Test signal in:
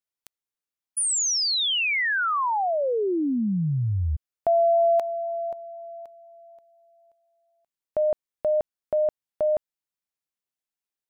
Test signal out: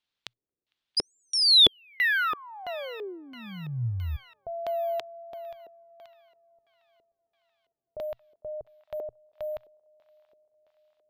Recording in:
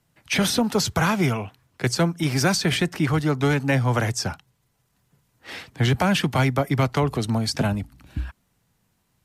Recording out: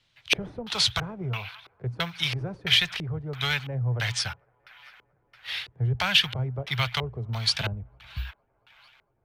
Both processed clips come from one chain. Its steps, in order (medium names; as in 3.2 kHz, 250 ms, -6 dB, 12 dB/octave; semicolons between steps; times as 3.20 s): amplifier tone stack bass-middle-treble 10-0-10; on a send: feedback echo behind a band-pass 227 ms, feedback 81%, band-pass 1.6 kHz, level -21 dB; on the sum: careless resampling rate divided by 3×, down none, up zero stuff; peaking EQ 120 Hz +6.5 dB 0.24 oct; LFO low-pass square 1.5 Hz 410–3600 Hz; trim +3.5 dB